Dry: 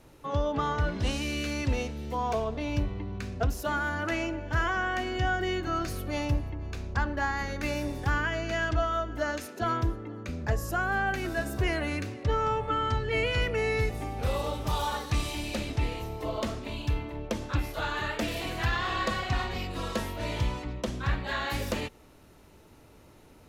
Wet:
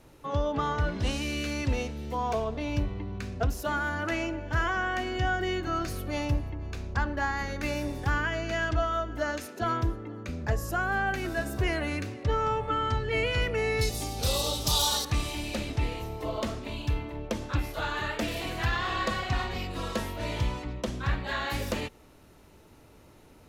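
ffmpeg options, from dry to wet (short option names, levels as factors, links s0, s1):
-filter_complex "[0:a]asettb=1/sr,asplit=3[s0][s1][s2];[s0]atrim=end=13.814[s3];[s1]atrim=start=13.81:end=15.05,asetpts=PTS-STARTPTS,afade=t=in:d=0.004:c=qsin,afade=t=out:st=1.236:d=0.004:c=qsin,highshelf=f=3000:t=q:w=1.5:g=14[s4];[s2]atrim=start=15.046[s5];[s3][s4]acrossfade=d=0.004:c1=hsin:c2=qsin[s6];[s6][s5]acrossfade=d=0.004:c1=qsin:c2=hsin"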